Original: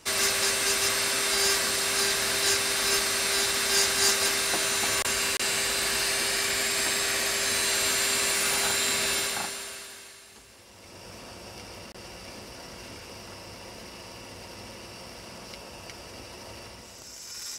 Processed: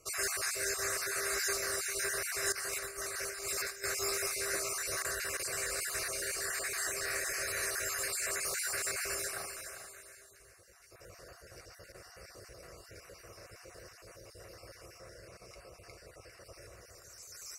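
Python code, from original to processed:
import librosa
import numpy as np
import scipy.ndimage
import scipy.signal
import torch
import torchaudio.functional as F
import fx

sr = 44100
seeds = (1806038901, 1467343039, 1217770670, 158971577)

y = fx.spec_dropout(x, sr, seeds[0], share_pct=37)
y = fx.fixed_phaser(y, sr, hz=890.0, stages=6)
y = y + 10.0 ** (-10.0 / 20.0) * np.pad(y, (int(399 * sr / 1000.0), 0))[:len(y)]
y = fx.over_compress(y, sr, threshold_db=-34.0, ratio=-0.5, at=(2.52, 3.84))
y = fx.high_shelf(y, sr, hz=6600.0, db=-5.5, at=(14.98, 16.46))
y = y * 10.0 ** (-4.5 / 20.0)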